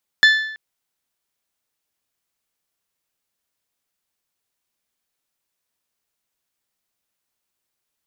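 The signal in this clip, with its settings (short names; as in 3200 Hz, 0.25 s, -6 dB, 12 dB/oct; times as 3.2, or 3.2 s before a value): metal hit bell, length 0.33 s, lowest mode 1750 Hz, modes 5, decay 0.74 s, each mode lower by 6.5 dB, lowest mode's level -7 dB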